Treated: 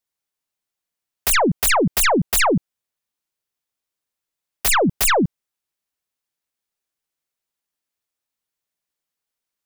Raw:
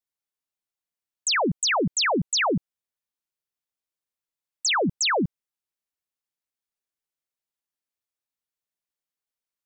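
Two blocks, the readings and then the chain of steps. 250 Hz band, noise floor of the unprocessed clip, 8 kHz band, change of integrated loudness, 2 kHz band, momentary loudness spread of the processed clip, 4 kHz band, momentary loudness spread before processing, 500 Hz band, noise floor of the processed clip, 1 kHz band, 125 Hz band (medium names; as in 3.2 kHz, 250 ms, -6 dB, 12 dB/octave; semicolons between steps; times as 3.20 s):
+6.0 dB, under -85 dBFS, +5.5 dB, +5.5 dB, +4.0 dB, 7 LU, 0.0 dB, 7 LU, +6.0 dB, -85 dBFS, +6.0 dB, +6.0 dB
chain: tracing distortion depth 0.37 ms; trim +6 dB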